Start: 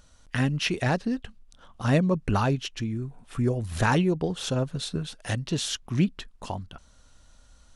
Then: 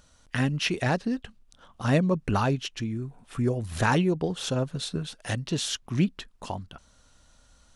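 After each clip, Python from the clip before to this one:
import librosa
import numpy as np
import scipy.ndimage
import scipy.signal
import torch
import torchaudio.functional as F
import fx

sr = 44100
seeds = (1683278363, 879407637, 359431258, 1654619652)

y = fx.low_shelf(x, sr, hz=65.0, db=-6.5)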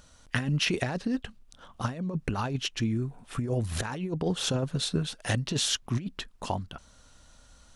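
y = fx.over_compress(x, sr, threshold_db=-27.0, ratio=-0.5)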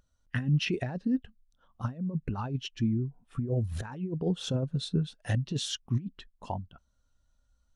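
y = fx.spectral_expand(x, sr, expansion=1.5)
y = y * 10.0 ** (-5.5 / 20.0)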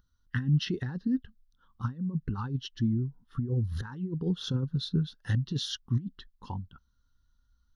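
y = fx.fixed_phaser(x, sr, hz=2400.0, stages=6)
y = y * 10.0 ** (1.5 / 20.0)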